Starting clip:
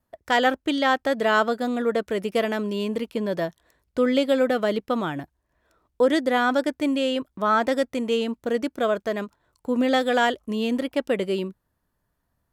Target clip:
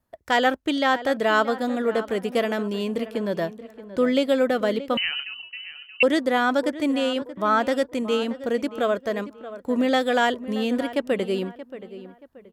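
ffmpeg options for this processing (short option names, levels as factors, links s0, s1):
-filter_complex "[0:a]asplit=2[s0][s1];[s1]adelay=628,lowpass=f=2400:p=1,volume=0.2,asplit=2[s2][s3];[s3]adelay=628,lowpass=f=2400:p=1,volume=0.35,asplit=2[s4][s5];[s5]adelay=628,lowpass=f=2400:p=1,volume=0.35[s6];[s0][s2][s4][s6]amix=inputs=4:normalize=0,asettb=1/sr,asplit=3[s7][s8][s9];[s7]atrim=end=4.974[s10];[s8]atrim=start=4.97:end=6.03,asetpts=PTS-STARTPTS,afade=t=in:d=0.004:c=qsin,afade=t=out:st=1.056:d=0.004:c=qsin,lowpass=f=2700:t=q:w=0.5098,lowpass=f=2700:t=q:w=0.6013,lowpass=f=2700:t=q:w=0.9,lowpass=f=2700:t=q:w=2.563,afreqshift=-3200[s11];[s9]atrim=start=6.026[s12];[s10][s11]acrossfade=d=0.004:c1=hsin:c2=qsin[s13];[s13][s12]acrossfade=d=0.004:c1=qsin:c2=hsin"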